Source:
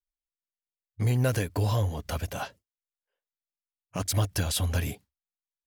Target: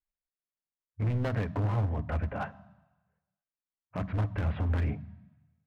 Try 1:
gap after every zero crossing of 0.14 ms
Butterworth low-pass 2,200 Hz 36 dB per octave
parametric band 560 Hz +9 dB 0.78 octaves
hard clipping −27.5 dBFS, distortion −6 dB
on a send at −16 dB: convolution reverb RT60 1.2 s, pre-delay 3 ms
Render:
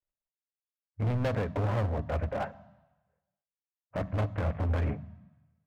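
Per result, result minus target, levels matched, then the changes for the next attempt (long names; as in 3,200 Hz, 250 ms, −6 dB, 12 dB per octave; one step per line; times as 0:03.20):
gap after every zero crossing: distortion +8 dB; 500 Hz band +5.0 dB
change: gap after every zero crossing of 0.03 ms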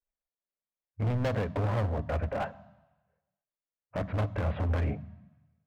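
500 Hz band +5.0 dB
remove: parametric band 560 Hz +9 dB 0.78 octaves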